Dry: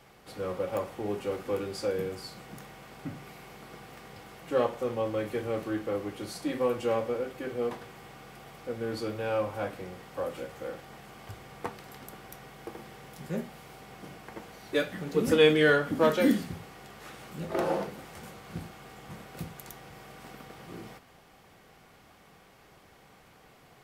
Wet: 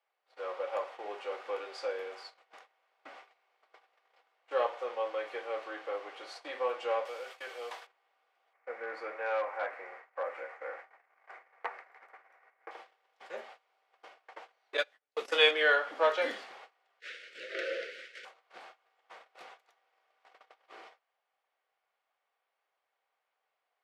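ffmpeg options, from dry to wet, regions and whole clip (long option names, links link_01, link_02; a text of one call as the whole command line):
ffmpeg -i in.wav -filter_complex "[0:a]asettb=1/sr,asplit=3[link_01][link_02][link_03];[link_01]atrim=end=7.054[link_04];[link_02]atrim=start=7.05:end=7.87,asetpts=PTS-STARTPTS,afade=type=in:duration=0.004:curve=qsin,afade=type=out:start_time=0.816:duration=0.004:curve=qsin,acrossover=split=430|3000[link_05][link_06][link_07];[link_06]acompressor=threshold=-37dB:ratio=3:attack=3.2:release=140:knee=2.83:detection=peak[link_08];[link_05][link_08][link_07]amix=inputs=3:normalize=0,aemphasis=mode=production:type=riaa[link_09];[link_03]atrim=start=7.866[link_10];[link_04][link_09]acrossfade=duration=0.004:curve1=hsin:curve2=qsin[link_11];[link_11][link_10]acrossfade=duration=0.004:curve1=qsin:curve2=hsin,asettb=1/sr,asplit=3[link_12][link_13][link_14];[link_12]atrim=end=8.534[link_15];[link_13]atrim=start=8.53:end=12.71,asetpts=PTS-STARTPTS,afade=type=in:duration=0.004:curve=qsin,afade=type=out:start_time=4.176:duration=0.004:curve=qsin,highshelf=frequency=2600:width_type=q:width=3:gain=-8,asoftclip=type=hard:threshold=-24dB[link_16];[link_14]atrim=start=12.706[link_17];[link_15][link_16]acrossfade=duration=0.004:curve1=hsin:curve2=qsin[link_18];[link_18][link_17]acrossfade=duration=0.004:curve1=qsin:curve2=hsin,asettb=1/sr,asplit=3[link_19][link_20][link_21];[link_19]atrim=end=14.774[link_22];[link_20]atrim=start=14.77:end=15.51,asetpts=PTS-STARTPTS,afade=type=in:duration=0.004:curve=qsin,afade=type=out:start_time=0.736:duration=0.004:curve=qsin,bandreject=frequency=60:width_type=h:width=6,bandreject=frequency=120:width_type=h:width=6,bandreject=frequency=180:width_type=h:width=6,bandreject=frequency=240:width_type=h:width=6,bandreject=frequency=300:width_type=h:width=6,bandreject=frequency=360:width_type=h:width=6,bandreject=frequency=420:width_type=h:width=6,bandreject=frequency=480:width_type=h:width=6,bandreject=frequency=540:width_type=h:width=6,bandreject=frequency=600:width_type=h:width=6,agate=range=-24dB:threshold=-28dB:ratio=16:release=100:detection=peak,highshelf=frequency=3200:gain=11[link_23];[link_21]atrim=start=15.506[link_24];[link_22][link_23]acrossfade=duration=0.004:curve1=hsin:curve2=qsin[link_25];[link_25][link_24]acrossfade=duration=0.004:curve1=qsin:curve2=hsin,asettb=1/sr,asplit=3[link_26][link_27][link_28];[link_26]atrim=end=17.004[link_29];[link_27]atrim=start=17:end=18.25,asetpts=PTS-STARTPTS,afade=type=in:duration=0.004:curve=qsin,afade=type=out:start_time=1.246:duration=0.004:curve=qsin,highshelf=frequency=10000:gain=-3.5,asplit=2[link_30][link_31];[link_31]highpass=frequency=720:poles=1,volume=13dB,asoftclip=type=tanh:threshold=-17.5dB[link_32];[link_30][link_32]amix=inputs=2:normalize=0,lowpass=frequency=6200:poles=1,volume=-6dB,asuperstop=centerf=900:order=8:qfactor=0.9[link_33];[link_28]atrim=start=18.246[link_34];[link_29][link_33]acrossfade=duration=0.004:curve1=hsin:curve2=qsin[link_35];[link_35][link_34]acrossfade=duration=0.004:curve1=qsin:curve2=hsin,lowpass=3900,agate=range=-24dB:threshold=-44dB:ratio=16:detection=peak,highpass=frequency=560:width=0.5412,highpass=frequency=560:width=1.3066" out.wav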